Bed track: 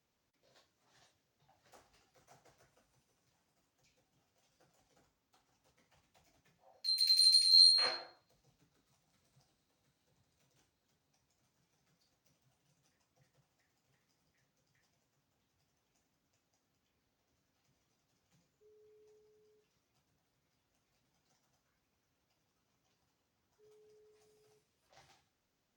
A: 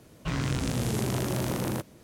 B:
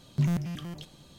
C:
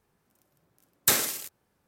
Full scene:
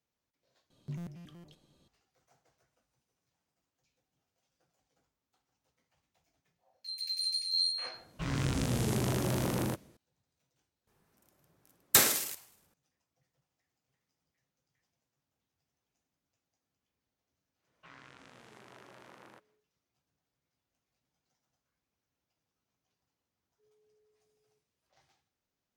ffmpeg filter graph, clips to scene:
ffmpeg -i bed.wav -i cue0.wav -i cue1.wav -i cue2.wav -filter_complex "[1:a]asplit=2[link_01][link_02];[0:a]volume=-6.5dB[link_03];[2:a]equalizer=frequency=380:width=0.87:gain=5[link_04];[link_01]dynaudnorm=framelen=130:gausssize=5:maxgain=8dB[link_05];[3:a]asplit=5[link_06][link_07][link_08][link_09][link_10];[link_07]adelay=105,afreqshift=140,volume=-22dB[link_11];[link_08]adelay=210,afreqshift=280,volume=-27.8dB[link_12];[link_09]adelay=315,afreqshift=420,volume=-33.7dB[link_13];[link_10]adelay=420,afreqshift=560,volume=-39.5dB[link_14];[link_06][link_11][link_12][link_13][link_14]amix=inputs=5:normalize=0[link_15];[link_02]bandpass=frequency=1500:width_type=q:width=0.9:csg=0[link_16];[link_03]asplit=2[link_17][link_18];[link_17]atrim=end=0.704[link_19];[link_04]atrim=end=1.18,asetpts=PTS-STARTPTS,volume=-16dB[link_20];[link_18]atrim=start=1.876[link_21];[link_05]atrim=end=2.03,asetpts=PTS-STARTPTS,volume=-10dB,afade=type=in:duration=0.004:curve=hsin,afade=type=out:start_time=2.026:duration=0.004:curve=hsin,adelay=350154S[link_22];[link_15]atrim=end=1.87,asetpts=PTS-STARTPTS,volume=-0.5dB,afade=type=in:duration=0.004:curve=hsin,afade=type=out:start_time=1.866:duration=0.004:curve=hsin,adelay=10870[link_23];[link_16]atrim=end=2.03,asetpts=PTS-STARTPTS,volume=-16dB,afade=type=in:duration=0.1,afade=type=out:start_time=1.93:duration=0.1,adelay=17580[link_24];[link_19][link_20]acrossfade=duration=0.004:curve1=hsin:curve2=hsin[link_25];[link_25][link_21]acrossfade=duration=0.004:curve1=hsin:curve2=hsin[link_26];[link_26][link_22][link_23][link_24]amix=inputs=4:normalize=0" out.wav

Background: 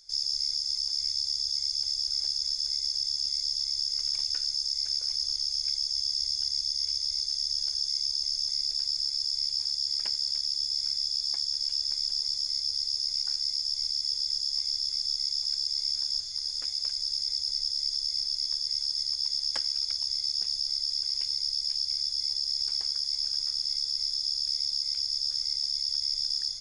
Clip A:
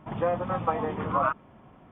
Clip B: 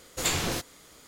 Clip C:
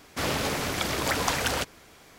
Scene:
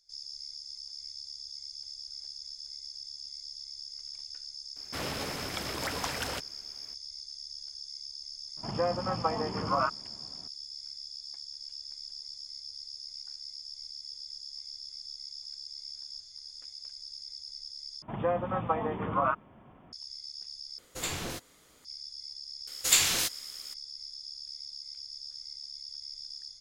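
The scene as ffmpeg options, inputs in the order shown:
ffmpeg -i bed.wav -i cue0.wav -i cue1.wav -i cue2.wav -filter_complex "[1:a]asplit=2[link_01][link_02];[2:a]asplit=2[link_03][link_04];[0:a]volume=-13.5dB[link_05];[link_03]acontrast=45[link_06];[link_04]tiltshelf=frequency=1300:gain=-9[link_07];[link_05]asplit=3[link_08][link_09][link_10];[link_08]atrim=end=18.024[link_11];[link_02]atrim=end=1.91,asetpts=PTS-STARTPTS,volume=-2.5dB[link_12];[link_09]atrim=start=19.926:end=20.784[link_13];[link_06]atrim=end=1.07,asetpts=PTS-STARTPTS,volume=-13dB[link_14];[link_10]atrim=start=21.846[link_15];[3:a]atrim=end=2.18,asetpts=PTS-STARTPTS,volume=-8dB,afade=type=in:duration=0.004:curve=hsin,afade=type=out:start_time=2.176:duration=0.004:curve=hsin,adelay=4760[link_16];[link_01]atrim=end=1.91,asetpts=PTS-STARTPTS,volume=-3dB,afade=type=in:duration=0.004:curve=hsin,afade=type=out:start_time=1.906:duration=0.004:curve=hsin,adelay=8570[link_17];[link_07]atrim=end=1.07,asetpts=PTS-STARTPTS,volume=-2dB,afade=type=in:duration=0.004:curve=hsin,afade=type=out:start_time=1.066:duration=0.004:curve=hsin,adelay=22670[link_18];[link_11][link_12]acrossfade=duration=0.004:curve1=hsin:curve2=hsin[link_19];[link_19][link_13]acrossfade=duration=0.004:curve1=hsin:curve2=hsin[link_20];[link_20][link_14]acrossfade=duration=0.004:curve1=hsin:curve2=hsin[link_21];[link_21][link_15]acrossfade=duration=0.004:curve1=hsin:curve2=hsin[link_22];[link_22][link_16][link_17][link_18]amix=inputs=4:normalize=0" out.wav

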